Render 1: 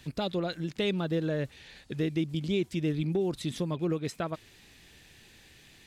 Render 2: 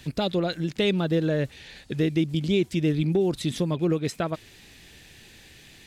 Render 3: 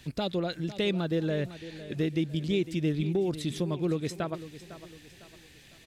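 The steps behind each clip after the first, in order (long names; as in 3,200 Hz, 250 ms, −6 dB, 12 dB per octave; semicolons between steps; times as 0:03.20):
parametric band 1,100 Hz −2.5 dB; level +6 dB
repeating echo 504 ms, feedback 39%, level −14.5 dB; level −5 dB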